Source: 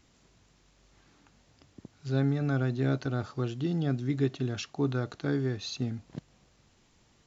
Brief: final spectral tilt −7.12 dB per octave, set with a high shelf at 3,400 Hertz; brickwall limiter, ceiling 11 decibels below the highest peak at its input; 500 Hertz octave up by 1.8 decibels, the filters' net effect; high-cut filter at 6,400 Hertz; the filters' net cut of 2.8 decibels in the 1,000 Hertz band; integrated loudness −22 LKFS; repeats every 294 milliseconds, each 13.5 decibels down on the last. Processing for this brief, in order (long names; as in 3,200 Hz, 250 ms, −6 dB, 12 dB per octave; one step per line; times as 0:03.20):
low-pass filter 6,400 Hz
parametric band 500 Hz +3.5 dB
parametric band 1,000 Hz −5.5 dB
high-shelf EQ 3,400 Hz −4.5 dB
brickwall limiter −26 dBFS
repeating echo 294 ms, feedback 21%, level −13.5 dB
level +14 dB